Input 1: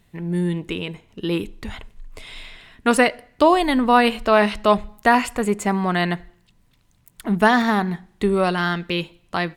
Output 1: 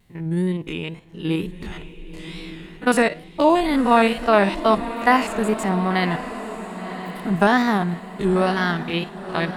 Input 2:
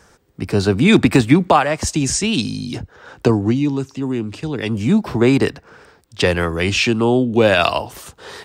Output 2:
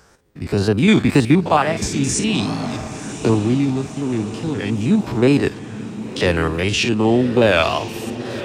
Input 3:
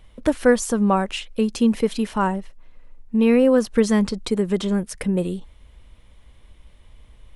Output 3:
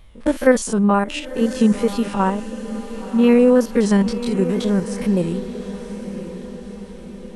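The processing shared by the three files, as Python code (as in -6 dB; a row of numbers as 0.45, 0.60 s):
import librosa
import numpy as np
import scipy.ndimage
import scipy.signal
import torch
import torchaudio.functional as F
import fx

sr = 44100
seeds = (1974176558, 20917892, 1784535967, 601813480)

y = fx.spec_steps(x, sr, hold_ms=50)
y = fx.wow_flutter(y, sr, seeds[0], rate_hz=2.1, depth_cents=97.0)
y = fx.echo_diffused(y, sr, ms=1041, feedback_pct=53, wet_db=-12.0)
y = librosa.util.normalize(y) * 10.0 ** (-1.5 / 20.0)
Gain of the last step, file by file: +0.5, 0.0, +3.0 dB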